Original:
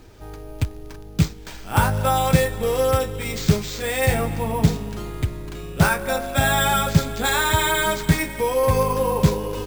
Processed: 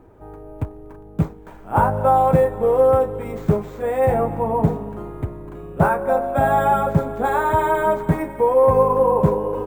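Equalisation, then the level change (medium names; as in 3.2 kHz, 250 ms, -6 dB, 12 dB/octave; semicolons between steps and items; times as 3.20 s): FFT filter 1 kHz 0 dB, 4.9 kHz -29 dB, 10 kHz -17 dB; dynamic bell 640 Hz, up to +5 dB, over -35 dBFS, Q 0.82; bass shelf 130 Hz -8.5 dB; +2.0 dB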